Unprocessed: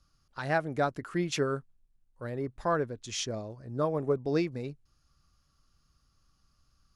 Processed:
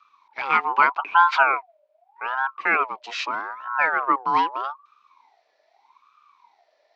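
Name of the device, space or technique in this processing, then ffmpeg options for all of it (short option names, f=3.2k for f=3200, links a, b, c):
voice changer toy: -filter_complex "[0:a]aeval=exprs='val(0)*sin(2*PI*900*n/s+900*0.35/0.81*sin(2*PI*0.81*n/s))':c=same,highpass=460,equalizer=f=540:t=q:w=4:g=-8,equalizer=f=1k:t=q:w=4:g=6,equalizer=f=1.4k:t=q:w=4:g=4,equalizer=f=2.4k:t=q:w=4:g=6,lowpass=f=4.4k:w=0.5412,lowpass=f=4.4k:w=1.3066,asettb=1/sr,asplit=3[a][b][c];[a]atrim=end=0.644[d];[b]atrim=start=0.64:end=1.52,asetpts=PTS-STARTPTS,afade=t=in:d=0.004:c=qsin,afade=t=out:st=0.876:d=0.004:c=qsin,equalizer=f=160:t=o:w=0.67:g=-8,equalizer=f=1k:t=o:w=0.67:g=7,equalizer=f=10k:t=o:w=0.67:g=-10[e];[c]atrim=start=1.516[f];[d][e]acrossfade=d=0.004:c1=hsin:c2=qsin[g];[g][f]acrossfade=d=0.004:c1=qsin:c2=hsin,volume=9dB"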